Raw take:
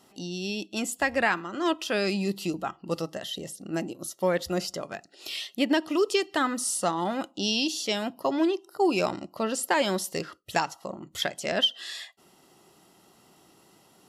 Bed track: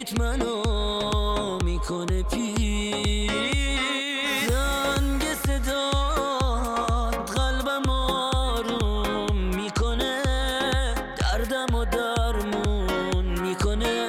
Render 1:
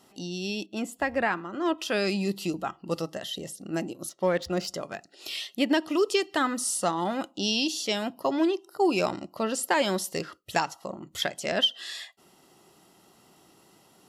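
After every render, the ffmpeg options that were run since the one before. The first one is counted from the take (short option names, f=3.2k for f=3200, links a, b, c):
-filter_complex "[0:a]asettb=1/sr,asplit=3[a][b][c];[a]atrim=end=0.664[d];[b]atrim=start=0.66:end=1.78,asetpts=PTS-STARTPTS,afade=t=in:d=0.004:c=qsin,afade=t=out:st=1.116:d=0.004:c=qsin,equalizer=f=7.7k:w=0.3:g=-10[e];[c]atrim=start=1.776[f];[d][e]acrossfade=d=0.004:c1=hsin:c2=qsin[g];[g][f]acrossfade=d=0.004:c1=qsin:c2=hsin,asettb=1/sr,asplit=3[h][i][j];[h]atrim=end=4.094[k];[i]atrim=start=4.09:end=4.67,asetpts=PTS-STARTPTS,afade=t=in:d=0.004:c=qsin,afade=t=out:st=0.576:d=0.004:c=qsin,adynamicsmooth=sensitivity=7:basefreq=4.3k[l];[j]atrim=start=4.666[m];[k][l]acrossfade=d=0.004:c1=hsin:c2=qsin[n];[n][m]acrossfade=d=0.004:c1=qsin:c2=hsin"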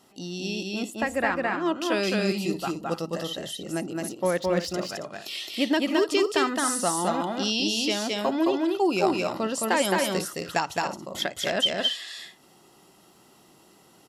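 -af "aecho=1:1:215.7|274.1:0.794|0.282"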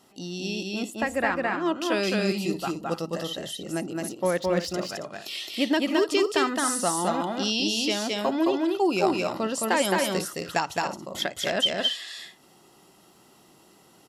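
-af anull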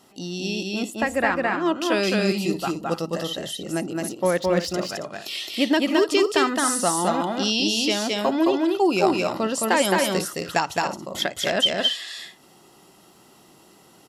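-af "volume=3.5dB"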